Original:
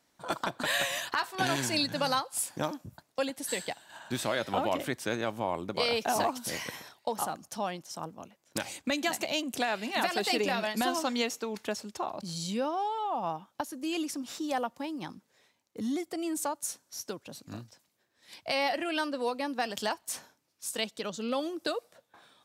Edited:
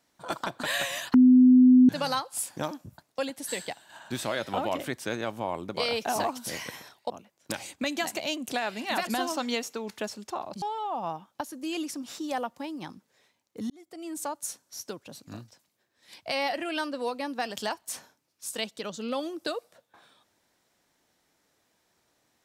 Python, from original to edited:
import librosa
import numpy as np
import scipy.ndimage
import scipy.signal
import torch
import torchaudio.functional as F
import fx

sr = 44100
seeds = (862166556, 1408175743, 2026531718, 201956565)

y = fx.edit(x, sr, fx.bleep(start_s=1.14, length_s=0.75, hz=253.0, db=-12.5),
    fx.cut(start_s=7.1, length_s=1.06),
    fx.cut(start_s=10.13, length_s=0.61),
    fx.cut(start_s=12.29, length_s=0.53),
    fx.fade_in_span(start_s=15.9, length_s=0.65), tone=tone)